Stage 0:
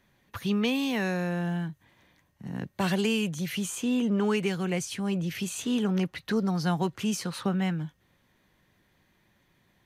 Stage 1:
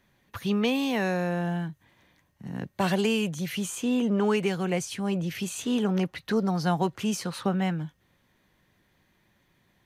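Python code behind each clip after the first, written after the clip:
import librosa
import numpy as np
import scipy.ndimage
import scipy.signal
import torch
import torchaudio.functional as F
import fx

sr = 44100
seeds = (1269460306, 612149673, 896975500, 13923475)

y = fx.dynamic_eq(x, sr, hz=670.0, q=0.95, threshold_db=-40.0, ratio=4.0, max_db=5)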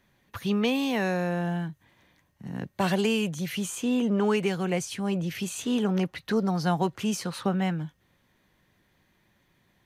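y = x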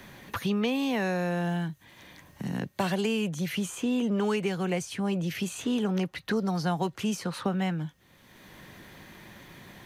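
y = fx.band_squash(x, sr, depth_pct=70)
y = F.gain(torch.from_numpy(y), -2.0).numpy()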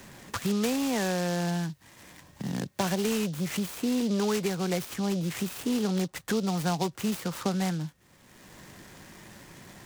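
y = fx.noise_mod_delay(x, sr, seeds[0], noise_hz=4300.0, depth_ms=0.068)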